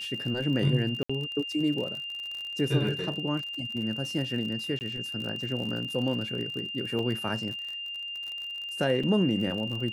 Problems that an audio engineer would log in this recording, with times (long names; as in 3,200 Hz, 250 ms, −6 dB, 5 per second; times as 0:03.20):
surface crackle 44 per second −34 dBFS
whistle 2,800 Hz −34 dBFS
0:01.03–0:01.09: drop-out 65 ms
0:04.79–0:04.81: drop-out 19 ms
0:06.99: drop-out 3 ms
0:09.03: drop-out 4.8 ms